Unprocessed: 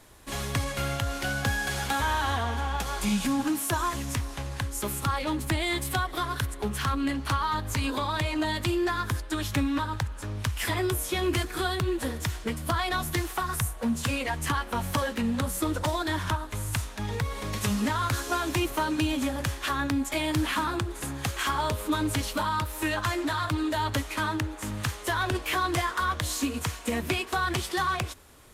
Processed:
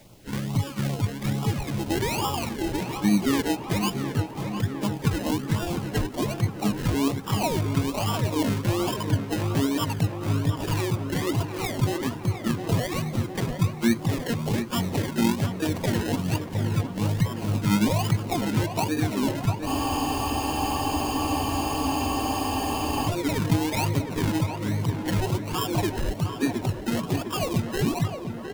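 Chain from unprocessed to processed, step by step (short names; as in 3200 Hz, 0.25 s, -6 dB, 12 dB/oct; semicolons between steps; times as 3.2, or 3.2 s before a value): Chebyshev band-pass 100–3600 Hz, order 5; reverb removal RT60 1.2 s; dynamic EQ 180 Hz, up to +5 dB, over -53 dBFS, Q 7.1; comb 1.1 ms, depth 88%; limiter -19 dBFS, peak gain reduction 7.5 dB; harmoniser +7 st -8 dB; tilt shelf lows +5.5 dB, about 1400 Hz; decimation with a swept rate 30×, swing 60% 1.2 Hz; added noise pink -55 dBFS; LFO notch sine 2.3 Hz 620–1800 Hz; tape echo 0.71 s, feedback 79%, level -6 dB, low-pass 2100 Hz; spectral freeze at 19.7, 3.37 s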